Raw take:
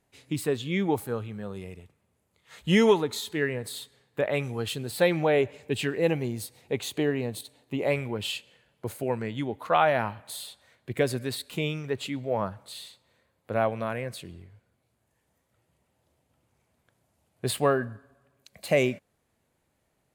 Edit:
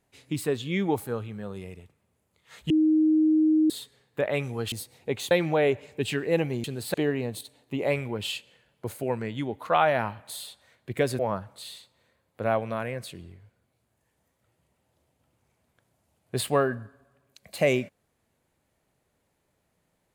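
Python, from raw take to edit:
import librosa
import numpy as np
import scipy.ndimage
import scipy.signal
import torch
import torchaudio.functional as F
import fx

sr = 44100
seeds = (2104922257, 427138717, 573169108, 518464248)

y = fx.edit(x, sr, fx.bleep(start_s=2.7, length_s=1.0, hz=312.0, db=-17.5),
    fx.swap(start_s=4.72, length_s=0.3, other_s=6.35, other_length_s=0.59),
    fx.cut(start_s=11.19, length_s=1.1), tone=tone)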